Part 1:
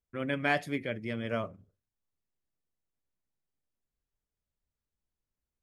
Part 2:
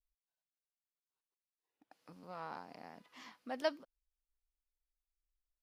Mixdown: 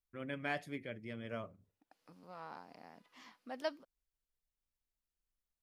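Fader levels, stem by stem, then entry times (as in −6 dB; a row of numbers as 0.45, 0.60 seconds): −10.0, −3.5 decibels; 0.00, 0.00 seconds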